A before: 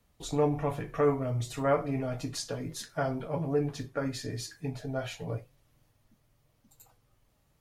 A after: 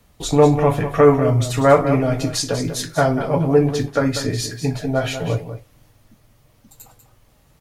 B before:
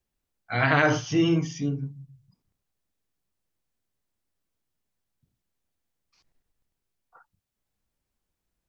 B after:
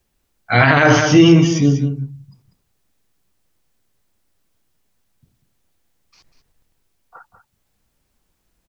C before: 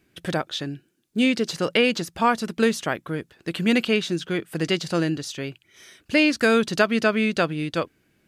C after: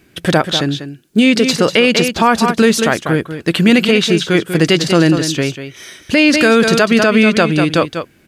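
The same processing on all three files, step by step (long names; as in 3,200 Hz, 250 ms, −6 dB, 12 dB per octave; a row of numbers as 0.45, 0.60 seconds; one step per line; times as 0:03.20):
on a send: single-tap delay 193 ms −10.5 dB
on the sum: boost into a limiter +14 dB
normalise the peak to −1.5 dBFS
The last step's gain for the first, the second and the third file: −0.5, −0.5, −0.5 decibels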